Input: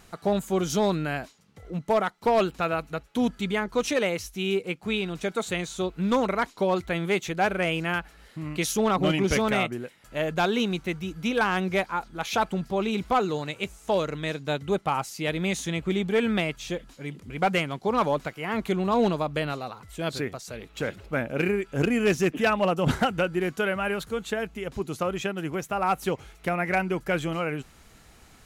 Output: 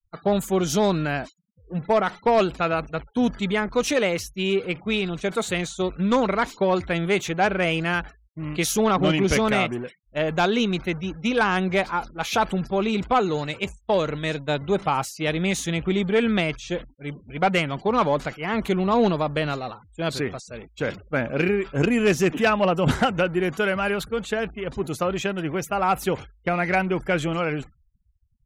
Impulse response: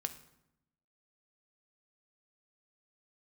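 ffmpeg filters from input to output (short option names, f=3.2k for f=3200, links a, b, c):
-af "aeval=exprs='val(0)+0.5*0.015*sgn(val(0))':c=same,agate=range=-33dB:threshold=-29dB:ratio=3:detection=peak,afftfilt=real='re*gte(hypot(re,im),0.00501)':imag='im*gte(hypot(re,im),0.00501)':win_size=1024:overlap=0.75,volume=2.5dB"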